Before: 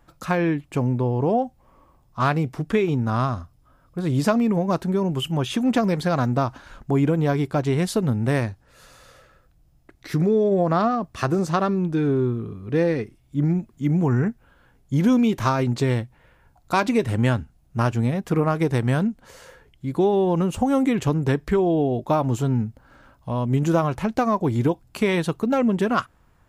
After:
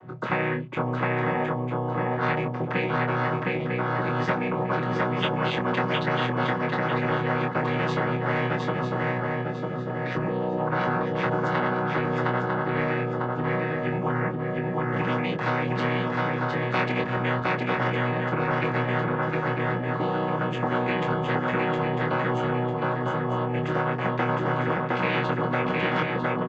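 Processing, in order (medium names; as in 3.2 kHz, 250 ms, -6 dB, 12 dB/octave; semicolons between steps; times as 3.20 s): vocoder on a held chord major triad, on B2; low-pass 2.3 kHz 12 dB/octave; doubling 24 ms -5 dB; shuffle delay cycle 949 ms, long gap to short 3:1, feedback 31%, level -3 dB; spectrum-flattening compressor 4:1; trim -5.5 dB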